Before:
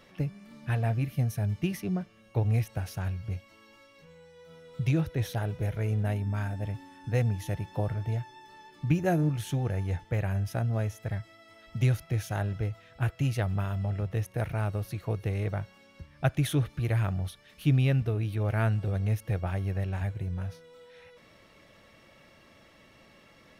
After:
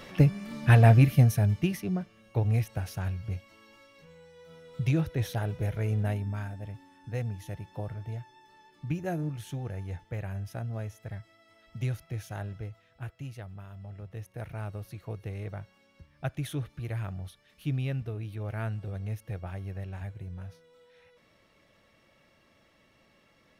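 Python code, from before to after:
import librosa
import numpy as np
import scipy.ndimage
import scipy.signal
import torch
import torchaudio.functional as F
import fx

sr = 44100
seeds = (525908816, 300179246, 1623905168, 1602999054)

y = fx.gain(x, sr, db=fx.line((1.01, 10.5), (1.81, 0.0), (6.07, 0.0), (6.62, -6.5), (12.45, -6.5), (13.61, -15.0), (14.59, -7.0)))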